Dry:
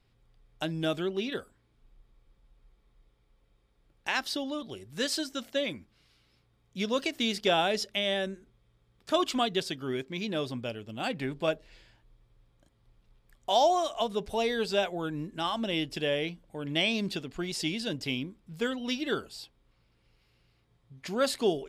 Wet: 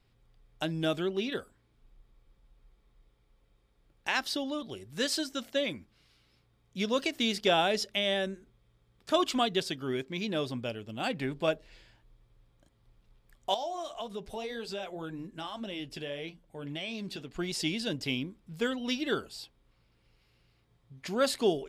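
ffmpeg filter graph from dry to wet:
-filter_complex "[0:a]asettb=1/sr,asplit=3[a][b][c];[a]atrim=end=13.544[d];[b]atrim=start=13.54:end=17.35,asetpts=PTS-STARTPTS,afade=t=in:d=0.004:c=qsin,afade=t=out:st=3.806:d=0.004:c=qsin,acompressor=threshold=-31dB:ratio=3:attack=3.2:release=140:knee=1:detection=peak,flanger=delay=2.7:depth=6.1:regen=-57:speed=1.8:shape=triangular[e];[c]atrim=start=17.346[f];[d][e]acrossfade=d=0.004:c1=hsin:c2=qsin[g];[g][f]acrossfade=d=0.004:c1=qsin:c2=hsin"

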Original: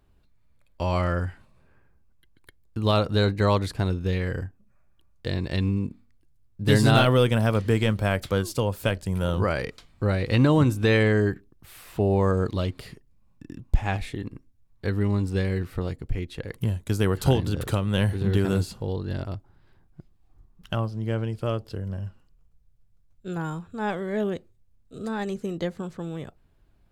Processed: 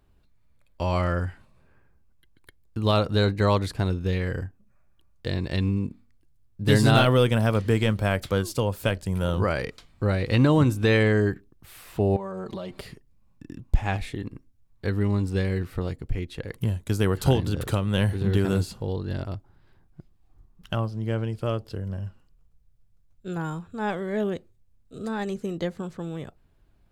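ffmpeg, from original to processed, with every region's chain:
-filter_complex "[0:a]asettb=1/sr,asplit=3[a][b][c];[a]atrim=end=12.164[d];[b]atrim=start=12.16:end=12.81,asetpts=PTS-STARTPTS,afade=t=in:d=0.004:c=qsin,afade=t=out:st=0.646:d=0.004:c=qsin,equalizer=f=750:w=1.1:g=9,aecho=1:1:5.2:0.85,atrim=end_sample=28665,acompressor=threshold=-30dB:ratio=16:attack=3.2:release=140:knee=1:detection=peak[e];[c]atrim=start=12.806[f];[d][e]acrossfade=d=0.004:c1=hsin:c2=qsin[g];[g][f]acrossfade=d=0.004:c1=qsin:c2=hsin"

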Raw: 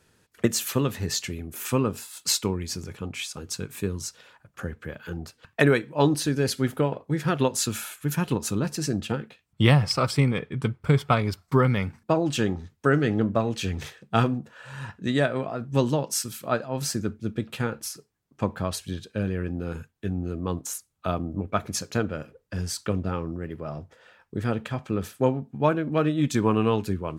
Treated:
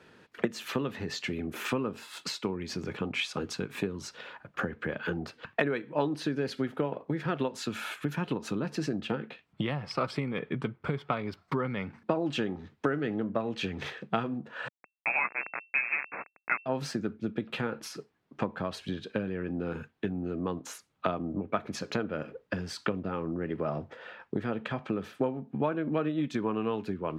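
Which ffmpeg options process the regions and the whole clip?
-filter_complex "[0:a]asettb=1/sr,asplit=3[a][b][c];[a]atrim=end=14.684[d];[b]atrim=start=14.68:end=16.66,asetpts=PTS-STARTPTS,afade=t=in:d=0.004:c=qsin,afade=t=out:st=1.976:d=0.004:c=qsin,equalizer=f=390:t=o:w=2.6:g=-8.5,aeval=exprs='val(0)*gte(abs(val(0)),0.0398)':c=same,lowpass=f=2.3k:t=q:w=0.5098,lowpass=f=2.3k:t=q:w=0.6013,lowpass=f=2.3k:t=q:w=0.9,lowpass=f=2.3k:t=q:w=2.563,afreqshift=-2700[e];[c]atrim=start=16.656[f];[d][e]acrossfade=d=0.004:c1=hsin:c2=qsin[g];[g][f]acrossfade=d=0.004:c1=qsin:c2=hsin,lowshelf=f=180:g=3.5,acompressor=threshold=-33dB:ratio=12,acrossover=split=170 4000:gain=0.141 1 0.1[h][i][j];[h][i][j]amix=inputs=3:normalize=0,volume=8.5dB"

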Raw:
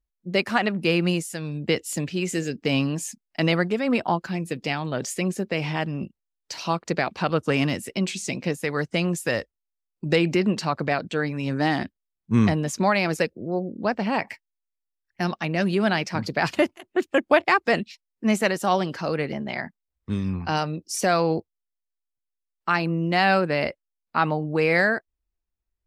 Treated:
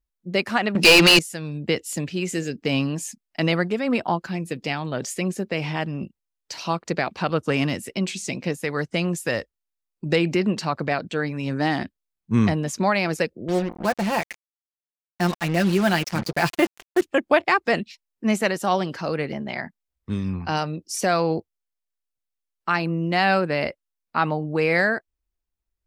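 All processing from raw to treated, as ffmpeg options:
-filter_complex "[0:a]asettb=1/sr,asplit=3[a][b][c];[a]atrim=end=0.754[d];[b]atrim=start=0.75:end=1.19,asetpts=PTS-STARTPTS,afade=t=in:d=0.004:c=qsin,afade=t=out:st=0.436:d=0.004:c=qsin,equalizer=f=5.2k:w=0.72:g=13.5,bandreject=f=60:t=h:w=6,bandreject=f=120:t=h:w=6,bandreject=f=180:t=h:w=6,bandreject=f=240:t=h:w=6,bandreject=f=300:t=h:w=6,bandreject=f=360:t=h:w=6,bandreject=f=420:t=h:w=6,asplit=2[e][f];[f]highpass=f=720:p=1,volume=26dB,asoftclip=type=tanh:threshold=-4dB[g];[e][g]amix=inputs=2:normalize=0,lowpass=f=6.2k:p=1,volume=-6dB[h];[c]atrim=start=1.186[i];[d][h]acrossfade=d=0.004:c1=hsin:c2=qsin[j];[j][i]acrossfade=d=0.004:c1=qsin:c2=hsin,asettb=1/sr,asplit=3[k][l][m];[k]atrim=end=13.484[n];[l]atrim=start=13.48:end=17.02,asetpts=PTS-STARTPTS,afade=t=in:d=0.004:c=qsin,afade=t=out:st=3.536:d=0.004:c=qsin,aecho=1:1:5.8:0.58,atrim=end_sample=156114,acrusher=bits=4:mix=0:aa=0.5[o];[m]atrim=start=17.016[p];[n][o]acrossfade=d=0.004:c1=hsin:c2=qsin[q];[q][p]acrossfade=d=0.004:c1=qsin:c2=hsin"

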